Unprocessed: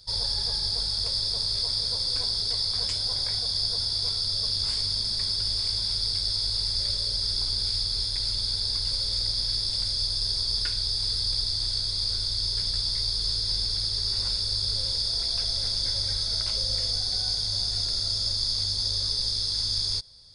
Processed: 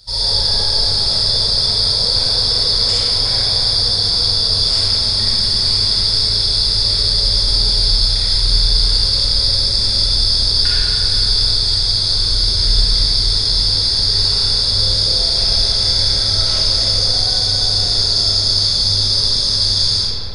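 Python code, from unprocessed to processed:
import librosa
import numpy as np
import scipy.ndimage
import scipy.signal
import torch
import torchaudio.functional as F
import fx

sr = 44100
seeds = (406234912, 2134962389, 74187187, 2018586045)

y = fx.notch(x, sr, hz=3000.0, q=6.3, at=(9.39, 9.82))
y = fx.rev_freeverb(y, sr, rt60_s=3.8, hf_ratio=0.4, predelay_ms=5, drr_db=-9.5)
y = y * librosa.db_to_amplitude(5.5)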